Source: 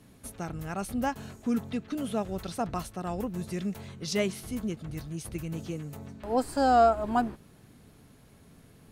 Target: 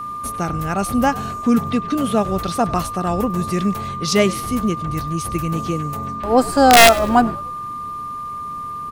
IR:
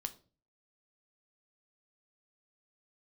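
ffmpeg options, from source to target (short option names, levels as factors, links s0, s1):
-filter_complex "[0:a]acontrast=66,aeval=exprs='val(0)+0.0251*sin(2*PI*1200*n/s)':c=same,aeval=exprs='(mod(2.51*val(0)+1,2)-1)/2.51':c=same,asplit=2[s0][s1];[s1]asplit=3[s2][s3][s4];[s2]adelay=99,afreqshift=-74,volume=0.106[s5];[s3]adelay=198,afreqshift=-148,volume=0.0447[s6];[s4]adelay=297,afreqshift=-222,volume=0.0186[s7];[s5][s6][s7]amix=inputs=3:normalize=0[s8];[s0][s8]amix=inputs=2:normalize=0,volume=2"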